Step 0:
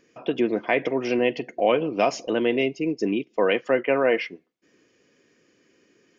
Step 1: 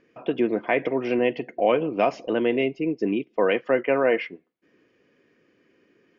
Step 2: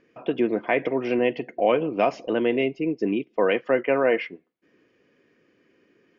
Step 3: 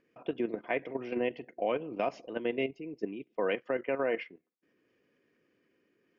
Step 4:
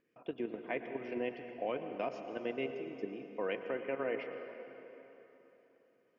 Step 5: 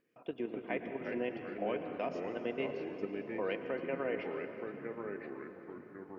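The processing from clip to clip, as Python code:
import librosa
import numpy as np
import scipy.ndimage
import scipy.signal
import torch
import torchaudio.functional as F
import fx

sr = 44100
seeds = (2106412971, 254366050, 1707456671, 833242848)

y1 = scipy.signal.sosfilt(scipy.signal.butter(2, 2800.0, 'lowpass', fs=sr, output='sos'), x)
y2 = y1
y3 = fx.level_steps(y2, sr, step_db=11)
y3 = y3 * librosa.db_to_amplitude(-7.0)
y4 = fx.rev_plate(y3, sr, seeds[0], rt60_s=3.6, hf_ratio=0.75, predelay_ms=90, drr_db=6.5)
y4 = y4 * librosa.db_to_amplitude(-6.0)
y5 = fx.echo_pitch(y4, sr, ms=226, semitones=-3, count=3, db_per_echo=-6.0)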